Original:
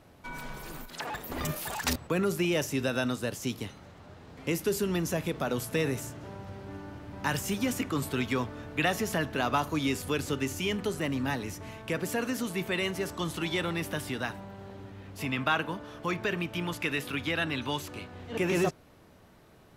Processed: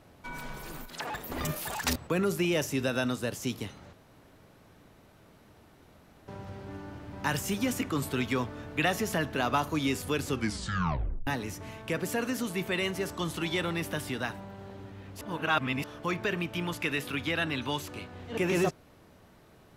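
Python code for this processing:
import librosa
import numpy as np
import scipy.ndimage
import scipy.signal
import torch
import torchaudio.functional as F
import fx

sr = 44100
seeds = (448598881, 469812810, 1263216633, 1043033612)

y = fx.edit(x, sr, fx.room_tone_fill(start_s=3.93, length_s=2.35),
    fx.tape_stop(start_s=10.28, length_s=0.99),
    fx.reverse_span(start_s=15.21, length_s=0.63), tone=tone)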